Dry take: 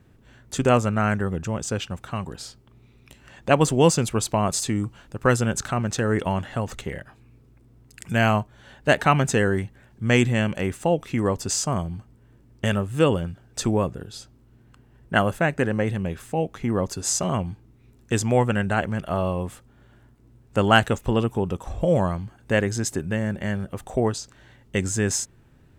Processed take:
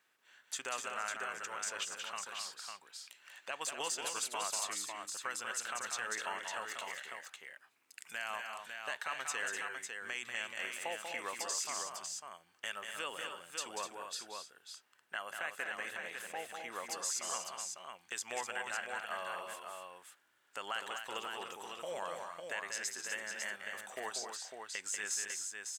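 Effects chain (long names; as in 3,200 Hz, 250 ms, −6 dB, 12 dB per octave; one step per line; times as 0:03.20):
high-pass filter 1,300 Hz 12 dB per octave
downward compressor 2 to 1, threshold −33 dBFS, peak gain reduction 10.5 dB
brickwall limiter −22 dBFS, peak gain reduction 7 dB
multi-tap delay 190/249/551 ms −6/−7.5/−5.5 dB
level −4.5 dB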